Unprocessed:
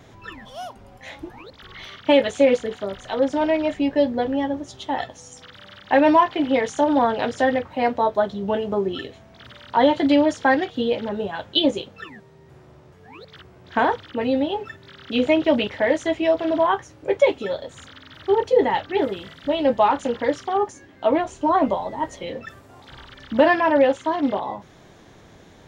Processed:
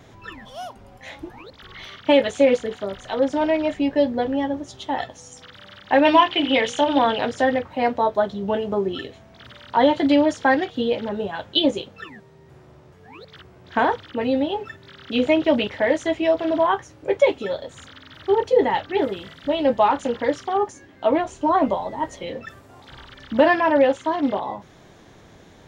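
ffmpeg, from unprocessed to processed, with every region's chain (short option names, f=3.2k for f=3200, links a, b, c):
-filter_complex "[0:a]asettb=1/sr,asplit=3[a][b][c];[a]atrim=end=6.054[d];[b]atrim=start=6.05:end=7.19,asetpts=PTS-STARTPTS,afade=t=in:d=0.004:c=qsin,afade=t=out:st=1.136:d=0.004:c=qsin,equalizer=f=3k:w=1.6:g=13,bandreject=f=60:t=h:w=6,bandreject=f=120:t=h:w=6,bandreject=f=180:t=h:w=6,bandreject=f=240:t=h:w=6,bandreject=f=300:t=h:w=6,bandreject=f=360:t=h:w=6,bandreject=f=420:t=h:w=6,bandreject=f=480:t=h:w=6,bandreject=f=540:t=h:w=6,bandreject=f=600:t=h:w=6[e];[c]atrim=start=7.186[f];[d][e]acrossfade=d=0.004:c1=hsin:c2=qsin[g];[g][f]acrossfade=d=0.004:c1=qsin:c2=hsin"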